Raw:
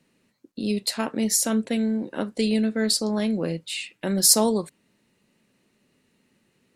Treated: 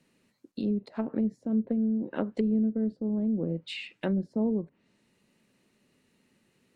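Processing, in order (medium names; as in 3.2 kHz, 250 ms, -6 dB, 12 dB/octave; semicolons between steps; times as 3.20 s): low-pass that closes with the level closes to 330 Hz, closed at -21 dBFS; 0.94–1.53 s: treble shelf 5.8 kHz -> 3.6 kHz +11 dB; trim -2 dB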